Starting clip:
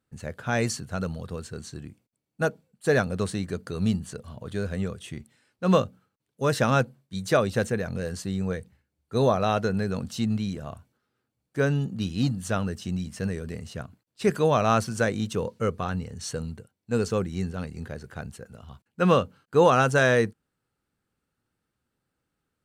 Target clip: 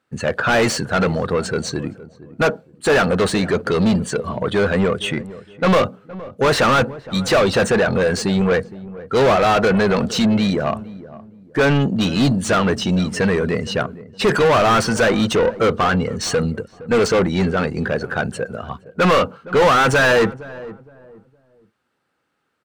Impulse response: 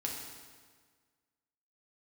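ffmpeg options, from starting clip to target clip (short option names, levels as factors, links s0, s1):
-filter_complex "[0:a]afftdn=nr=12:nf=-48,asplit=2[s0][s1];[s1]highpass=f=720:p=1,volume=44.7,asoftclip=type=tanh:threshold=0.447[s2];[s0][s2]amix=inputs=2:normalize=0,lowpass=f=7000:p=1,volume=0.501,highshelf=f=4500:g=-10.5,asplit=2[s3][s4];[s4]adelay=465,lowpass=f=830:p=1,volume=0.158,asplit=2[s5][s6];[s6]adelay=465,lowpass=f=830:p=1,volume=0.32,asplit=2[s7][s8];[s8]adelay=465,lowpass=f=830:p=1,volume=0.32[s9];[s5][s7][s9]amix=inputs=3:normalize=0[s10];[s3][s10]amix=inputs=2:normalize=0"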